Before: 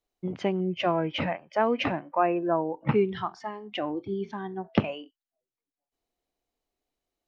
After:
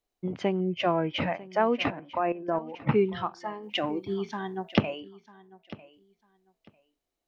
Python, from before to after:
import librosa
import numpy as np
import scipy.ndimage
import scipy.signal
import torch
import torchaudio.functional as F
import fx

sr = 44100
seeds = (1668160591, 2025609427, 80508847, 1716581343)

y = fx.level_steps(x, sr, step_db=13, at=(1.9, 2.79))
y = fx.high_shelf(y, sr, hz=fx.line((3.62, 2900.0), (4.77, 2100.0)), db=11.5, at=(3.62, 4.77), fade=0.02)
y = fx.echo_feedback(y, sr, ms=948, feedback_pct=19, wet_db=-19.0)